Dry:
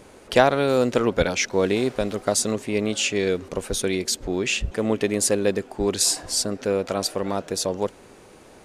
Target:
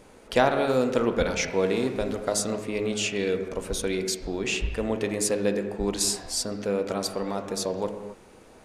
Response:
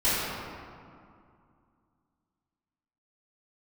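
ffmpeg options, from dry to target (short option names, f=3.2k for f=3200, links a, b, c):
-filter_complex "[0:a]asplit=2[a][b];[1:a]atrim=start_sample=2205,afade=t=out:st=0.33:d=0.01,atrim=end_sample=14994,lowpass=2.8k[c];[b][c]afir=irnorm=-1:irlink=0,volume=-18.5dB[d];[a][d]amix=inputs=2:normalize=0,volume=-5dB"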